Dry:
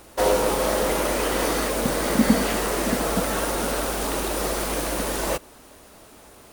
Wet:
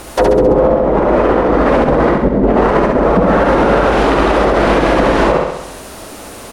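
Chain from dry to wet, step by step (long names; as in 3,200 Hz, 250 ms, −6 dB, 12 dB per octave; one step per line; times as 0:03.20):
treble cut that deepens with the level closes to 440 Hz, closed at −17 dBFS
0:00.68–0:03.06: compressor whose output falls as the input rises −27 dBFS, ratio −0.5
repeating echo 67 ms, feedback 58%, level −5.5 dB
boost into a limiter +17 dB
level −1 dB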